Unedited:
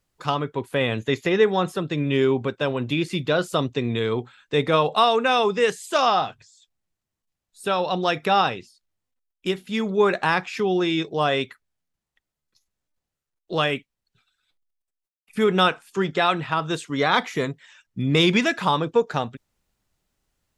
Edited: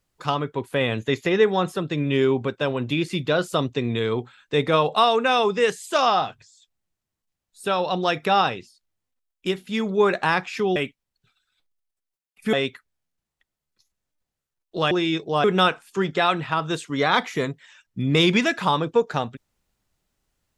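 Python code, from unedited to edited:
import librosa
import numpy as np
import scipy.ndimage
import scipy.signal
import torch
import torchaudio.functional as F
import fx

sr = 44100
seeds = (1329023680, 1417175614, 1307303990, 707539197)

y = fx.edit(x, sr, fx.swap(start_s=10.76, length_s=0.53, other_s=13.67, other_length_s=1.77), tone=tone)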